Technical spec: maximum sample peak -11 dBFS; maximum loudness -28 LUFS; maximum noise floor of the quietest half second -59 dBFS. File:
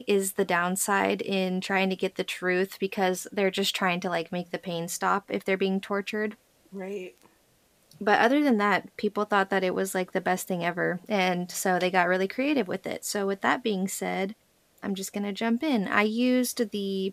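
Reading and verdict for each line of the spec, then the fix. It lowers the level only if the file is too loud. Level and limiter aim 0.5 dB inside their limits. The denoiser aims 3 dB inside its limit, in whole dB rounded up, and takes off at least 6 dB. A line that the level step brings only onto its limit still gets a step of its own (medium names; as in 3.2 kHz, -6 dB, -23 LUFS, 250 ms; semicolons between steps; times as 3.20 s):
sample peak -6.0 dBFS: fail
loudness -27.0 LUFS: fail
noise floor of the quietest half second -64 dBFS: pass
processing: trim -1.5 dB; peak limiter -11.5 dBFS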